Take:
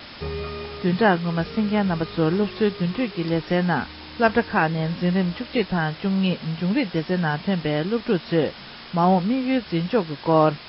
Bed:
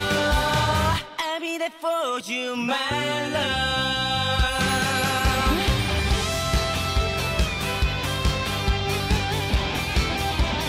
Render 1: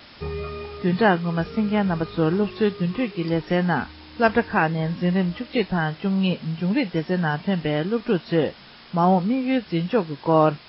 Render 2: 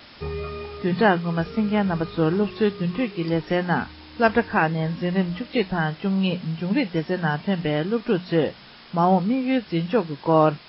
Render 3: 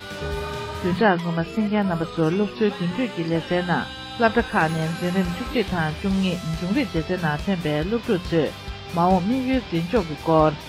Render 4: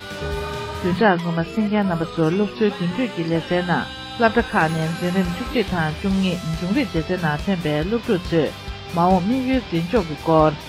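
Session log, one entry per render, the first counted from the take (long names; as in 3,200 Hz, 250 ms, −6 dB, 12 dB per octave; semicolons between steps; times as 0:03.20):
noise reduction from a noise print 6 dB
mains-hum notches 60/120/180 Hz
mix in bed −11.5 dB
level +2 dB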